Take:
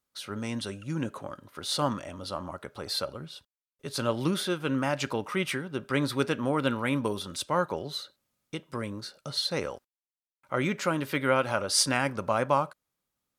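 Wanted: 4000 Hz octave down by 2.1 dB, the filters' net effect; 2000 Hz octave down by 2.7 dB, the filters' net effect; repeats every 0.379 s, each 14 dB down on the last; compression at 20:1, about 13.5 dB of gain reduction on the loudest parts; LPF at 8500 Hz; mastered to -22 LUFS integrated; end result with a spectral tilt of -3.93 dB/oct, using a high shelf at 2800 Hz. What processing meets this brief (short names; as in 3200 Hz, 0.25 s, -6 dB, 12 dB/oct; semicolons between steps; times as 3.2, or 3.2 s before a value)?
LPF 8500 Hz; bell 2000 Hz -5 dB; high shelf 2800 Hz +8.5 dB; bell 4000 Hz -8.5 dB; compressor 20:1, threshold -32 dBFS; feedback echo 0.379 s, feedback 20%, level -14 dB; gain +16 dB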